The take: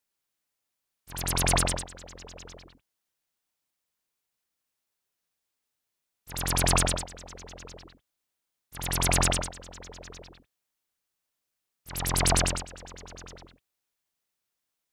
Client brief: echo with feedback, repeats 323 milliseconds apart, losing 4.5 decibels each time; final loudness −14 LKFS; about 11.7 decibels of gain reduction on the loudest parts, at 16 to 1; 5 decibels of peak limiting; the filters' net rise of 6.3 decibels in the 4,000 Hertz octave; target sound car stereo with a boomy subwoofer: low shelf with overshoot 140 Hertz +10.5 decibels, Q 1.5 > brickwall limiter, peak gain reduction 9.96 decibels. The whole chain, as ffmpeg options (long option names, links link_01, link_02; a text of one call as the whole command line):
ffmpeg -i in.wav -af "equalizer=frequency=4000:width_type=o:gain=8,acompressor=threshold=-28dB:ratio=16,alimiter=limit=-22dB:level=0:latency=1,lowshelf=frequency=140:width_type=q:width=1.5:gain=10.5,aecho=1:1:323|646|969|1292|1615|1938|2261|2584|2907:0.596|0.357|0.214|0.129|0.0772|0.0463|0.0278|0.0167|0.01,volume=23dB,alimiter=limit=-2.5dB:level=0:latency=1" out.wav